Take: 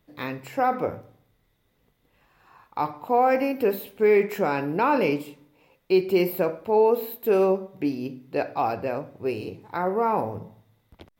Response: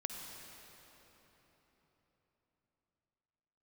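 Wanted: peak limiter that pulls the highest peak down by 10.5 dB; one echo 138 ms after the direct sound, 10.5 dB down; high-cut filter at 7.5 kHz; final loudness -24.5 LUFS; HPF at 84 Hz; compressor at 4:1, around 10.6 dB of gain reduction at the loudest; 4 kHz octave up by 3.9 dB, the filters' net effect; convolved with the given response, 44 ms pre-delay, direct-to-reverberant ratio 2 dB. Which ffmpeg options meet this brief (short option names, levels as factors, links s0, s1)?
-filter_complex "[0:a]highpass=84,lowpass=7500,equalizer=f=4000:t=o:g=5.5,acompressor=threshold=0.0398:ratio=4,alimiter=level_in=1.33:limit=0.0631:level=0:latency=1,volume=0.75,aecho=1:1:138:0.299,asplit=2[s0][s1];[1:a]atrim=start_sample=2205,adelay=44[s2];[s1][s2]afir=irnorm=-1:irlink=0,volume=0.794[s3];[s0][s3]amix=inputs=2:normalize=0,volume=3.35"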